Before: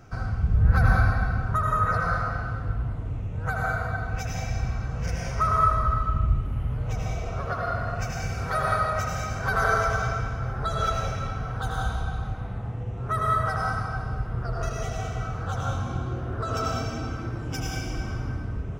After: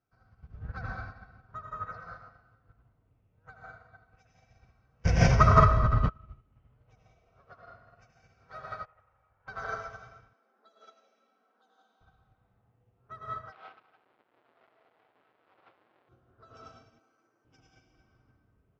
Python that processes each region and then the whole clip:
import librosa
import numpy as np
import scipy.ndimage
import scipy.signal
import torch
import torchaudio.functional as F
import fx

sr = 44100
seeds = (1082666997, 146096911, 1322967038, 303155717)

y = fx.chain(x, sr, fx.low_shelf(hz=230.0, db=10.5),
    fx.notch(hz=1300.0, q=14.0),
    fx.env_flatten(amount_pct=100), at=(5.05, 6.09))
y = fx.chain(y, sr, fx.lower_of_two(delay_ms=2.2),
    fx.lowpass(hz=1200.0, slope=12),
    fx.peak_eq(hz=280.0, db=-14.0, octaves=1.3), at=(8.85, 9.48))
y = fx.chain(y, sr, fx.dynamic_eq(hz=1400.0, q=0.89, threshold_db=-39.0, ratio=4.0, max_db=-6),
    fx.brickwall_highpass(low_hz=200.0), at=(10.33, 12.01))
y = fx.chain(y, sr, fx.halfwave_hold(),
    fx.highpass(hz=460.0, slope=12),
    fx.air_absorb(metres=420.0), at=(13.52, 16.09))
y = fx.chain(y, sr, fx.highpass(hz=360.0, slope=12),
    fx.resample_bad(factor=6, down='filtered', up='hold'), at=(16.99, 17.45))
y = scipy.signal.sosfilt(scipy.signal.butter(4, 5700.0, 'lowpass', fs=sr, output='sos'), y)
y = fx.low_shelf(y, sr, hz=130.0, db=-10.0)
y = fx.upward_expand(y, sr, threshold_db=-35.0, expansion=2.5)